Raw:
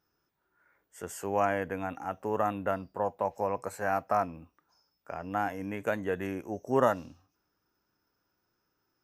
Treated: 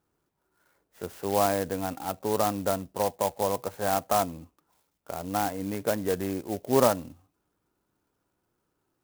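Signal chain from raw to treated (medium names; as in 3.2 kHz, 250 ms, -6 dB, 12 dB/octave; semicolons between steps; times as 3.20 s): low-pass 4.6 kHz 12 dB/octave; peaking EQ 1.7 kHz -6 dB 1.2 oct; sampling jitter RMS 0.067 ms; trim +4.5 dB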